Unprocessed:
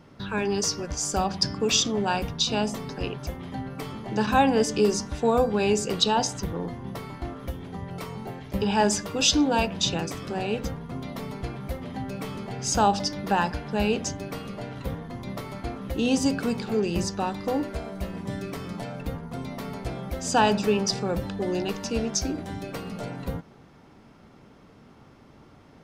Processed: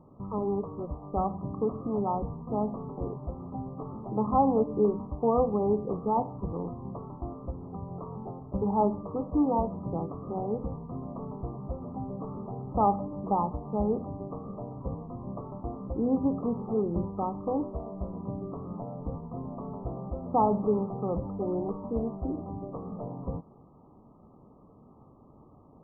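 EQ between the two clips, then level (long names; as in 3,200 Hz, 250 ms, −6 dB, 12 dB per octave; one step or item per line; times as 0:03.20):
linear-phase brick-wall low-pass 1,300 Hz
−3.0 dB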